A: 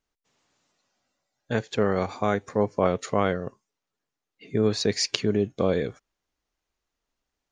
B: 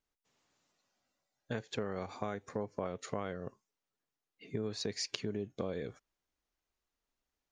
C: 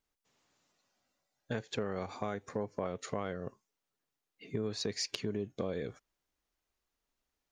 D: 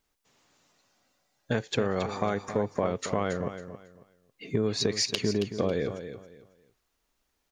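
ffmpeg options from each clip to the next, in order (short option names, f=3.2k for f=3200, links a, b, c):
-af "acompressor=threshold=-28dB:ratio=5,volume=-6dB"
-af "asoftclip=type=tanh:threshold=-21.5dB,volume=2dB"
-af "aecho=1:1:274|548|822:0.299|0.0746|0.0187,volume=8.5dB"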